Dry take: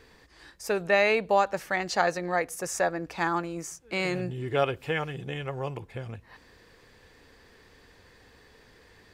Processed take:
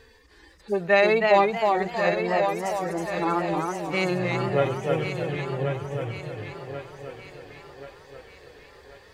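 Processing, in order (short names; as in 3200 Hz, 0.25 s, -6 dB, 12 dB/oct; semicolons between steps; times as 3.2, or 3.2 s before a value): median-filter separation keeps harmonic; thinning echo 1.084 s, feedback 49%, high-pass 230 Hz, level -7.5 dB; warbling echo 0.316 s, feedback 35%, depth 133 cents, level -4 dB; gain +4 dB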